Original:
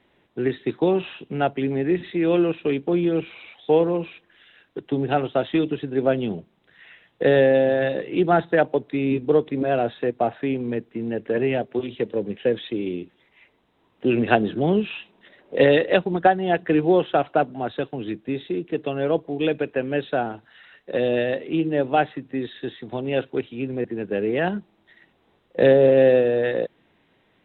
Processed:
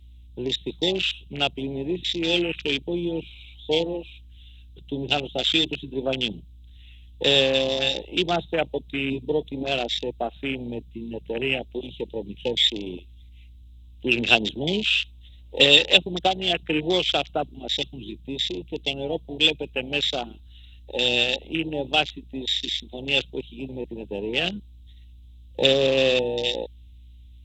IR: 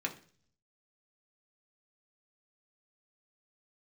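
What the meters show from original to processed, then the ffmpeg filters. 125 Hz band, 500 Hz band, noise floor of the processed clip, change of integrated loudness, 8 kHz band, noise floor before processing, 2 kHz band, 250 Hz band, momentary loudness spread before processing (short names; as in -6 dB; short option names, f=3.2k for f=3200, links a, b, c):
-5.5 dB, -6.0 dB, -47 dBFS, -1.0 dB, n/a, -64 dBFS, +3.0 dB, -6.0 dB, 13 LU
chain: -af "aexciter=amount=12:drive=9.7:freq=2.8k,aeval=exprs='val(0)+0.0141*(sin(2*PI*60*n/s)+sin(2*PI*2*60*n/s)/2+sin(2*PI*3*60*n/s)/3+sin(2*PI*4*60*n/s)/4+sin(2*PI*5*60*n/s)/5)':c=same,afwtdn=0.1,volume=-6dB"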